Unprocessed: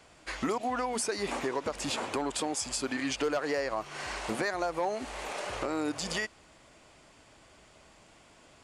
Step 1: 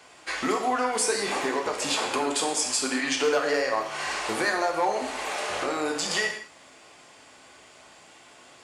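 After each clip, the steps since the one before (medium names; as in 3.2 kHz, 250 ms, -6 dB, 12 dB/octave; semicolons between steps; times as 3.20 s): high-pass 430 Hz 6 dB/octave; gated-style reverb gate 250 ms falling, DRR 1 dB; trim +5.5 dB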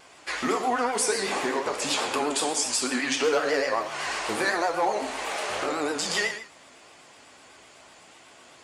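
vibrato 8 Hz 86 cents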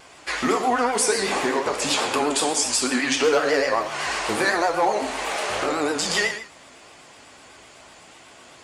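bass shelf 110 Hz +6.5 dB; trim +4 dB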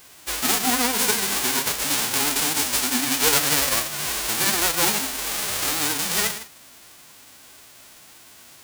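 formants flattened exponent 0.1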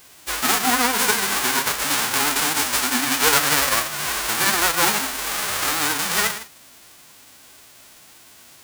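dynamic bell 1.3 kHz, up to +7 dB, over -39 dBFS, Q 0.84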